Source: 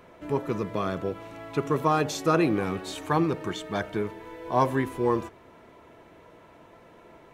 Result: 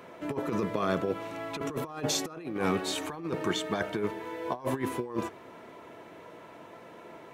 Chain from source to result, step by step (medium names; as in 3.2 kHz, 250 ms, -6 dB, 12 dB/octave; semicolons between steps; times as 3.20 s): Bessel high-pass 160 Hz, order 2; compressor with a negative ratio -30 dBFS, ratio -0.5